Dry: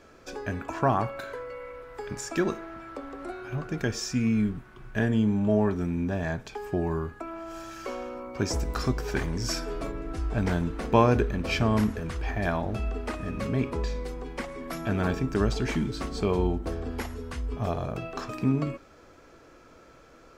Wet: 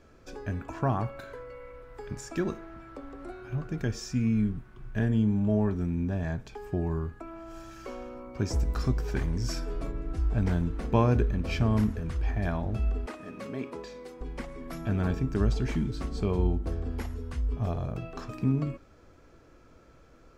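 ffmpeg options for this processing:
-filter_complex "[0:a]asettb=1/sr,asplit=3[a][b][c];[a]atrim=end=13.064[d];[b]atrim=start=13.06:end=14.21,asetpts=PTS-STARTPTS,afade=t=in:d=0.004:c=qsin,afade=t=out:st=1.146:d=0.004:c=qsin,highpass=310[e];[c]atrim=start=14.206[f];[d][e]acrossfade=d=0.004:c1=hsin:c2=qsin[g];[g][f]acrossfade=d=0.004:c1=qsin:c2=hsin,lowshelf=f=210:g=11,volume=-7dB"

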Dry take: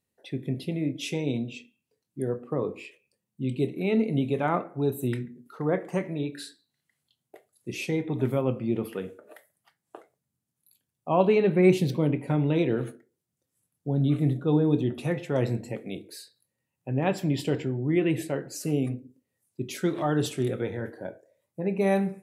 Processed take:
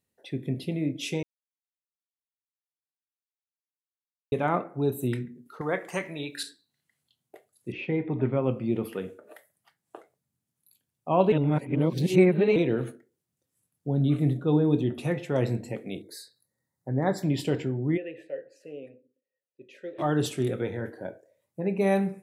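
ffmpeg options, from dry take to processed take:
-filter_complex "[0:a]asettb=1/sr,asplit=3[a][b][c];[a]atrim=end=5.614[d];[b]atrim=start=5.61:end=6.43,asetpts=PTS-STARTPTS,afade=t=in:d=0.004:c=qsin,afade=t=out:st=0.816:d=0.004:c=qsin,tiltshelf=f=770:g=-8[e];[c]atrim=start=6.426[f];[d][e]acrossfade=d=0.004:c1=hsin:c2=qsin[g];[g][f]acrossfade=d=0.004:c1=qsin:c2=hsin,asettb=1/sr,asplit=3[h][i][j];[h]atrim=end=7.724[k];[i]atrim=start=7.72:end=8.44,asetpts=PTS-STARTPTS,afade=t=in:d=0.004:c=qsin,afade=t=out:st=0.716:d=0.004:c=qsin,lowpass=f=2.7k:w=0.5412,lowpass=f=2.7k:w=1.3066[l];[j]atrim=start=8.436[m];[k][l]acrossfade=d=0.004:c1=hsin:c2=qsin[n];[n][m]acrossfade=d=0.004:c1=qsin:c2=hsin,asettb=1/sr,asplit=3[o][p][q];[o]atrim=end=16.024[r];[p]atrim=start=16.02:end=17.23,asetpts=PTS-STARTPTS,afade=t=in:d=0.004:c=qsin,afade=t=out:st=1.206:d=0.004:c=qsin,asuperstop=centerf=2800:order=12:qfactor=2[s];[q]atrim=start=17.226[t];[r][s]acrossfade=d=0.004:c1=hsin:c2=qsin[u];[u][t]acrossfade=d=0.004:c1=qsin:c2=hsin,asplit=3[v][w][x];[v]afade=t=out:st=17.96:d=0.02[y];[w]asplit=3[z][aa][ab];[z]bandpass=f=530:t=q:w=8,volume=0dB[ac];[aa]bandpass=f=1.84k:t=q:w=8,volume=-6dB[ad];[ab]bandpass=f=2.48k:t=q:w=8,volume=-9dB[ae];[ac][ad][ae]amix=inputs=3:normalize=0,afade=t=in:st=17.96:d=0.02,afade=t=out:st=19.98:d=0.02[af];[x]afade=t=in:st=19.98:d=0.02[ag];[y][af][ag]amix=inputs=3:normalize=0,asplit=5[ah][ai][aj][ak][al];[ah]atrim=end=1.23,asetpts=PTS-STARTPTS,afade=t=out:st=1.226:d=0.004:c=hsin[am];[ai]atrim=start=1.23:end=4.32,asetpts=PTS-STARTPTS,volume=0[an];[aj]atrim=start=4.32:end=11.322,asetpts=PTS-STARTPTS,afade=t=in:d=0.004:c=hsin[ao];[ak]atrim=start=11.318:end=12.562,asetpts=PTS-STARTPTS,areverse[ap];[al]atrim=start=12.558[aq];[am][an][ao]concat=n=3:v=0:a=1[ar];[ar][ap]acrossfade=d=0.004:c1=hsin:c2=hsin[as];[as][aq]acrossfade=d=0.004:c1=hsin:c2=hsin"

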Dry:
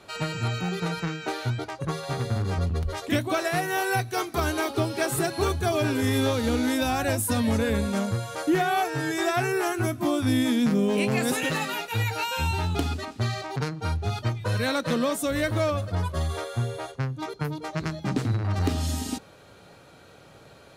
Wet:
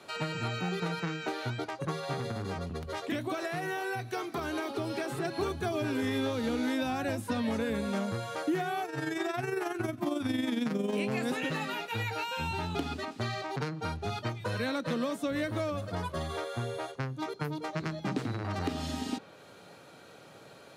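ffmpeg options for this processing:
-filter_complex "[0:a]asettb=1/sr,asplit=3[a][b][c];[a]atrim=end=2.174[d];[b]atrim=start=2.17:end=5.25,asetpts=PTS-STARTPTS,afade=t=in:d=0.004:c=qsin,afade=t=out:st=3.076:d=0.004:c=qsin,acompressor=threshold=-26dB:ratio=4:attack=3.2:release=140:knee=1:detection=peak[e];[c]atrim=start=5.246[f];[d][e]acrossfade=d=0.004:c1=hsin:c2=qsin[g];[g][f]acrossfade=d=0.004:c1=qsin:c2=hsin,asettb=1/sr,asplit=3[h][i][j];[h]atrim=end=8.854[k];[i]atrim=start=8.85:end=10.93,asetpts=PTS-STARTPTS,afade=t=in:d=0.004:c=qsin,afade=t=out:st=2.076:d=0.004:c=qsin,tremolo=f=22:d=0.571[l];[j]atrim=start=10.926[m];[k][l]acrossfade=d=0.004:c1=hsin:c2=qsin[n];[n][m]acrossfade=d=0.004:c1=qsin:c2=hsin,highpass=150,acrossover=split=310|4700[o][p][q];[o]acompressor=threshold=-32dB:ratio=4[r];[p]acompressor=threshold=-32dB:ratio=4[s];[q]acompressor=threshold=-55dB:ratio=4[t];[r][s][t]amix=inputs=3:normalize=0,volume=-1dB"

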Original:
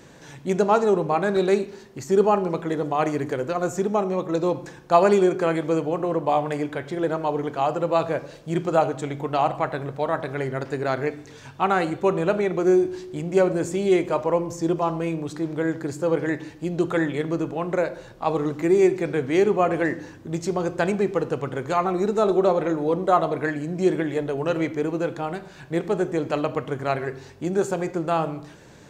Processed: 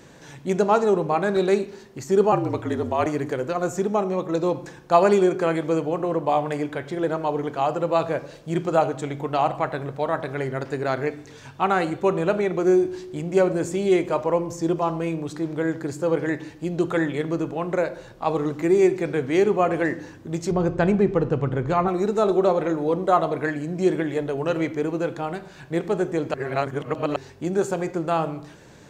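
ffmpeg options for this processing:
-filter_complex "[0:a]asettb=1/sr,asplit=3[a][b][c];[a]atrim=end=2.324[d];[b]atrim=start=2.32:end=3.06,asetpts=PTS-STARTPTS,afade=t=in:d=0.004:c=qsin,afade=t=out:st=0.736:d=0.004:c=qsin,afreqshift=-50[e];[c]atrim=start=3.056[f];[d][e]acrossfade=d=0.004:c1=hsin:c2=qsin[g];[g][f]acrossfade=d=0.004:c1=qsin:c2=hsin,asettb=1/sr,asplit=3[h][i][j];[h]atrim=end=20.514[k];[i]atrim=start=20.51:end=21.88,asetpts=PTS-STARTPTS,afade=t=in:d=0.004:c=qsin,afade=t=out:st=1.366:d=0.004:c=qsin,aemphasis=mode=reproduction:type=bsi[l];[j]atrim=start=21.876[m];[k][l]acrossfade=d=0.004:c1=hsin:c2=qsin[n];[n][m]acrossfade=d=0.004:c1=qsin:c2=hsin,asplit=3[o][p][q];[o]atrim=end=26.342[r];[p]atrim=start=26.338:end=27.162,asetpts=PTS-STARTPTS,areverse[s];[q]atrim=start=27.158[t];[r][s]acrossfade=d=0.004:c1=hsin:c2=hsin[u];[u][t]acrossfade=d=0.004:c1=hsin:c2=hsin"

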